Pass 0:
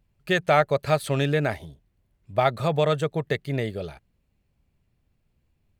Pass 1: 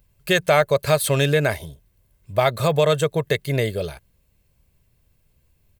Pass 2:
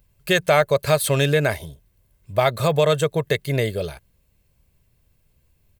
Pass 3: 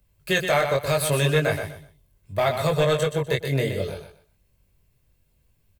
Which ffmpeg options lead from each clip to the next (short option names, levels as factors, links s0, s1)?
-filter_complex "[0:a]aecho=1:1:1.9:0.35,asplit=2[s0][s1];[s1]alimiter=limit=0.158:level=0:latency=1:release=174,volume=0.944[s2];[s0][s2]amix=inputs=2:normalize=0,aemphasis=mode=production:type=50kf,volume=0.891"
-af anull
-filter_complex "[0:a]flanger=delay=19.5:depth=2.8:speed=0.72,acrossover=split=140|1200|4900[s0][s1][s2][s3];[s1]asoftclip=type=hard:threshold=0.126[s4];[s0][s4][s2][s3]amix=inputs=4:normalize=0,aecho=1:1:124|248|372:0.422|0.097|0.0223"